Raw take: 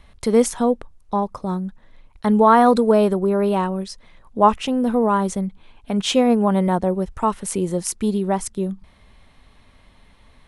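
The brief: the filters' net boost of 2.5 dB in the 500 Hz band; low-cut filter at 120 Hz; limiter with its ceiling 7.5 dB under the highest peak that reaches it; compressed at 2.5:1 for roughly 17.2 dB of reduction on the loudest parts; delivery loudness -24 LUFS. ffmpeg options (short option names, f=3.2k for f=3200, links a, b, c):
-af "highpass=120,equalizer=f=500:t=o:g=3,acompressor=threshold=-35dB:ratio=2.5,volume=10dB,alimiter=limit=-14dB:level=0:latency=1"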